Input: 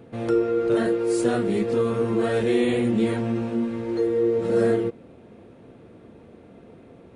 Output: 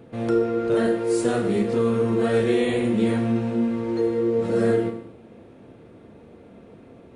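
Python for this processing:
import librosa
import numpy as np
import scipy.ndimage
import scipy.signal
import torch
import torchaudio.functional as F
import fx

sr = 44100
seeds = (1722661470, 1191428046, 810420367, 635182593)

y = fx.rev_schroeder(x, sr, rt60_s=0.73, comb_ms=27, drr_db=7.0)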